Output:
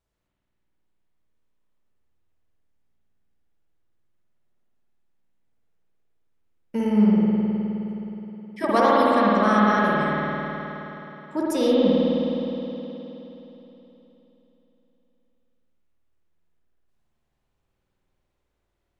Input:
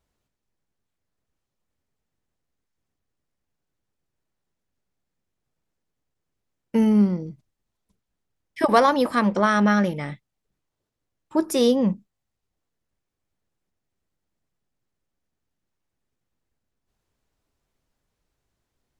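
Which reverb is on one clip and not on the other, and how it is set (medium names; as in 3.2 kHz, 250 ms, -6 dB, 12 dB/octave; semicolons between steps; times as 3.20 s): spring tank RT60 3.6 s, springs 52 ms, chirp 35 ms, DRR -6.5 dB; trim -6 dB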